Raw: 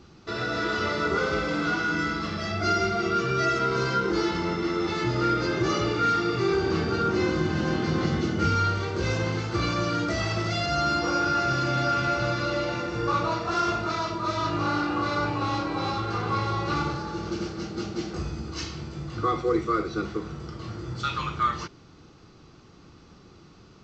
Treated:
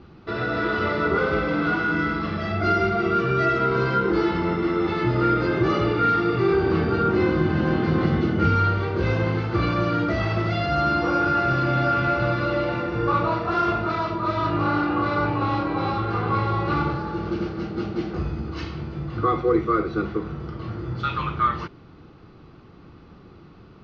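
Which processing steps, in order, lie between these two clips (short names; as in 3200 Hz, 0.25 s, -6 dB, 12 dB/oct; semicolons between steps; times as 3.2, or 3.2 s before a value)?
air absorption 310 m; gain +5 dB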